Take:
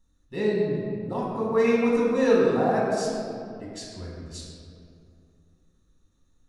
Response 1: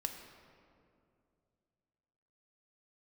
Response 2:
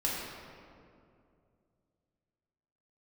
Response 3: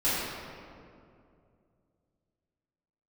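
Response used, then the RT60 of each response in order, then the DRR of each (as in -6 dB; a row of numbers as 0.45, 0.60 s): 2; 2.5, 2.4, 2.4 s; 4.5, -5.5, -13.5 dB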